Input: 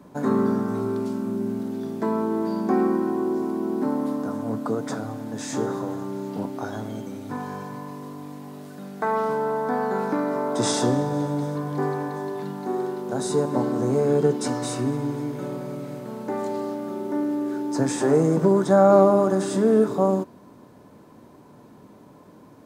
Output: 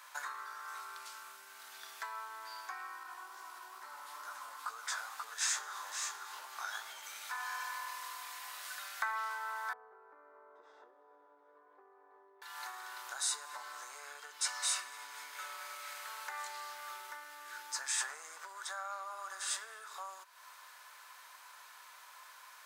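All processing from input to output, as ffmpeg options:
ffmpeg -i in.wav -filter_complex "[0:a]asettb=1/sr,asplit=3[link_01][link_02][link_03];[link_01]atrim=end=3.034[link_04];[link_02]atrim=start=3.03:end=7.03,asetpts=PTS-STARTPTS,afade=type=in:duration=0.004:curve=qsin,afade=type=out:start_time=3.996:duration=0.004:curve=qsin,aecho=1:1:535:0.531,atrim=end_sample=176400,flanger=delay=15:depth=6.6:speed=2.3[link_05];[link_03]atrim=start=7.026[link_06];[link_04][link_05]acrossfade=duration=0.004:curve1=hsin:curve2=qsin[link_07];[link_07][link_06]acrossfade=duration=0.004:curve1=qsin:curve2=hsin,asettb=1/sr,asplit=3[link_08][link_09][link_10];[link_08]atrim=end=9.734[link_11];[link_09]atrim=start=9.73:end=12.42,asetpts=PTS-STARTPTS,afade=type=in:duration=0.004:curve=qsin,afade=type=out:start_time=2.686:duration=0.004:curve=qsin,lowpass=frequency=420:width_type=q:width=2.9,asplit=2[link_12][link_13];[link_13]adelay=13,volume=-7.5dB[link_14];[link_12][link_14]amix=inputs=2:normalize=0,atrim=end_sample=118629[link_15];[link_10]atrim=start=12.416[link_16];[link_11][link_15]acrossfade=duration=0.004:curve1=hsin:curve2=qsin[link_17];[link_17][link_16]acrossfade=duration=0.004:curve1=qsin:curve2=hsin,acompressor=threshold=-33dB:ratio=6,highpass=frequency=1300:width=0.5412,highpass=frequency=1300:width=1.3066,volume=9dB" out.wav

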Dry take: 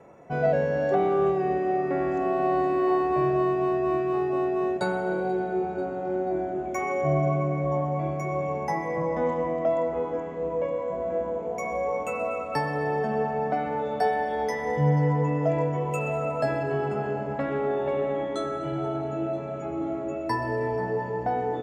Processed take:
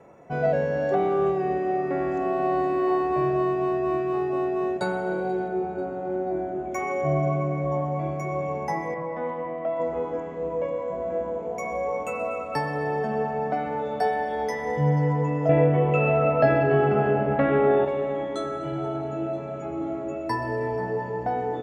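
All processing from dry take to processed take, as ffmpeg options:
ffmpeg -i in.wav -filter_complex "[0:a]asettb=1/sr,asplit=3[link_01][link_02][link_03];[link_01]atrim=end=5.484[link_04];[link_02]atrim=start=5.48:end=6.72,asetpts=PTS-STARTPTS,afade=type=in:duration=0.004:curve=qsin,afade=type=out:start_time=1.236:duration=0.004:curve=qsin,equalizer=frequency=4900:width=0.43:gain=-4,bandreject=frequency=5500:width=9.1[link_05];[link_03]atrim=start=6.716[link_06];[link_04][link_05]acrossfade=duration=0.004:curve1=hsin:curve2=qsin[link_07];[link_07][link_06]acrossfade=duration=0.004:curve1=qsin:curve2=hsin,asettb=1/sr,asplit=3[link_08][link_09][link_10];[link_08]atrim=end=8.944[link_11];[link_09]atrim=start=8.94:end=9.8,asetpts=PTS-STARTPTS,afade=type=in:duration=0.004:curve=qsin,afade=type=out:start_time=0.856:duration=0.004:curve=qsin,highpass=120,lowpass=2800,equalizer=frequency=250:width=0.38:gain=-6[link_12];[link_10]atrim=start=9.796[link_13];[link_11][link_12]acrossfade=duration=0.004:curve1=hsin:curve2=qsin[link_14];[link_14][link_13]acrossfade=duration=0.004:curve1=qsin:curve2=hsin,asettb=1/sr,asplit=3[link_15][link_16][link_17];[link_15]atrim=end=15.494[link_18];[link_16]atrim=start=15.49:end=17.85,asetpts=PTS-STARTPTS,afade=type=in:duration=0.004:curve=qsin,afade=type=out:start_time=2.356:duration=0.004:curve=qsin,lowpass=frequency=3400:width=0.5412,lowpass=frequency=3400:width=1.3066,bandreject=frequency=970:width=8.9,acontrast=87[link_19];[link_17]atrim=start=17.846[link_20];[link_18][link_19]acrossfade=duration=0.004:curve1=hsin:curve2=qsin[link_21];[link_21][link_20]acrossfade=duration=0.004:curve1=qsin:curve2=hsin" out.wav

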